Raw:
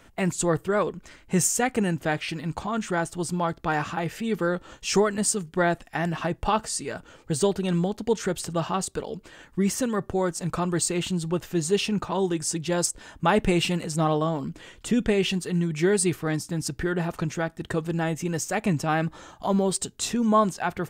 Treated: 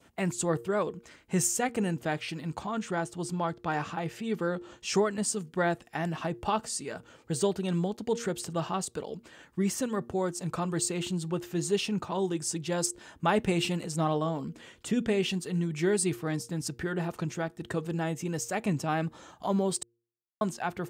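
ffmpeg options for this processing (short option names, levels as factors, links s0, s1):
-filter_complex "[0:a]asettb=1/sr,asplit=3[s0][s1][s2];[s0]atrim=end=2.724[s3];[s1]atrim=start=2.72:end=5.34,asetpts=PTS-STARTPTS,afade=t=in:d=0.004:c=qsin,afade=t=out:st=2.616:d=0.004:c=qsin,highshelf=f=11000:g=-7.5[s4];[s2]atrim=start=5.336[s5];[s3][s4]acrossfade=d=0.004:c1=hsin:c2=qsin[s6];[s6][s5]acrossfade=d=0.004:c1=qsin:c2=hsin,asplit=3[s7][s8][s9];[s7]atrim=end=19.83,asetpts=PTS-STARTPTS,afade=t=out:st=19.826:d=0.004:c=hsin[s10];[s8]atrim=start=19.83:end=20.41,asetpts=PTS-STARTPTS,volume=0[s11];[s9]atrim=start=20.41,asetpts=PTS-STARTPTS,afade=t=in:d=0.004:c=hsin[s12];[s10][s11][s12]concat=n=3:v=0:a=1,highpass=82,bandreject=f=117:t=h:w=4,bandreject=f=234:t=h:w=4,bandreject=f=351:t=h:w=4,bandreject=f=468:t=h:w=4,adynamicequalizer=threshold=0.00631:dfrequency=1700:dqfactor=1.6:tfrequency=1700:tqfactor=1.6:attack=5:release=100:ratio=0.375:range=2:mode=cutabove:tftype=bell,volume=0.596"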